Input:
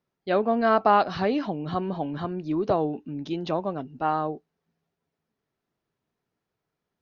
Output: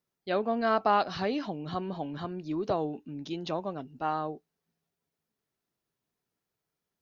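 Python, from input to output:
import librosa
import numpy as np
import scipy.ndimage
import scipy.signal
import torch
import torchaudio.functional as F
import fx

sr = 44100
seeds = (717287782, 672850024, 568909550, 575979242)

y = fx.high_shelf(x, sr, hz=4100.0, db=11.0)
y = y * 10.0 ** (-6.0 / 20.0)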